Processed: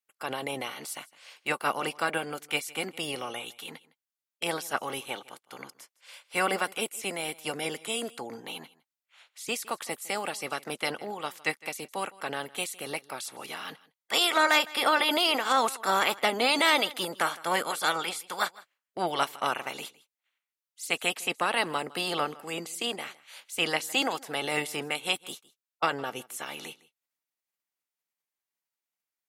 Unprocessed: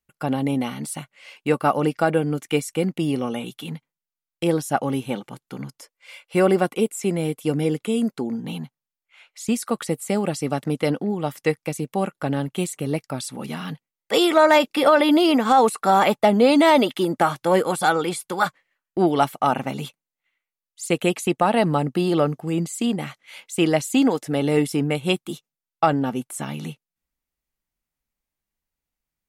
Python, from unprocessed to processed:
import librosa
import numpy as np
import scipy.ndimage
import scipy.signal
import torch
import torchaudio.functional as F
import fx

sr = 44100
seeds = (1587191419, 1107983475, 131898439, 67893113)

y = fx.spec_clip(x, sr, under_db=15)
y = fx.highpass(y, sr, hz=750.0, slope=6)
y = y + 10.0 ** (-21.5 / 20.0) * np.pad(y, (int(159 * sr / 1000.0), 0))[:len(y)]
y = y * librosa.db_to_amplitude(-5.5)